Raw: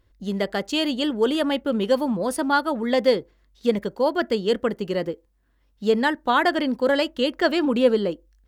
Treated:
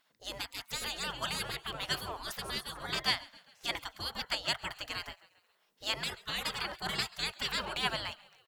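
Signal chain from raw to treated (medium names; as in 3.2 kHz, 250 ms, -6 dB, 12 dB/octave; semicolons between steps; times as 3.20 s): frequency-shifting echo 135 ms, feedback 56%, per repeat -58 Hz, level -22 dB; spectral gate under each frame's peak -25 dB weak; trim +3.5 dB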